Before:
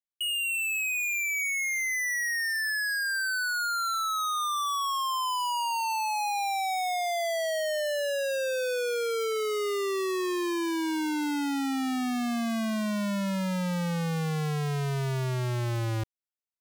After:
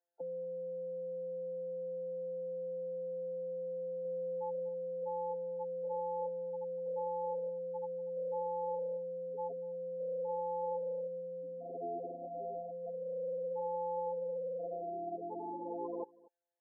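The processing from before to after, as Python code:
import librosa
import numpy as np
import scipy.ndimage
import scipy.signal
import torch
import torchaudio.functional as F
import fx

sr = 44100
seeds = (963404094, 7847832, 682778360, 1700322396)

y = np.r_[np.sort(x[:len(x) // 256 * 256].reshape(-1, 256), axis=1).ravel(), x[len(x) // 256 * 256:]]
y = fx.spec_gate(y, sr, threshold_db=-15, keep='strong')
y = scipy.signal.sosfilt(scipy.signal.butter(4, 490.0, 'highpass', fs=sr, output='sos'), y)
y = y + 10.0 ** (-23.0 / 20.0) * np.pad(y, (int(239 * sr / 1000.0), 0))[:len(y)]
y = fx.env_flatten(y, sr, amount_pct=70, at=(4.05, 4.69))
y = y * 10.0 ** (6.5 / 20.0)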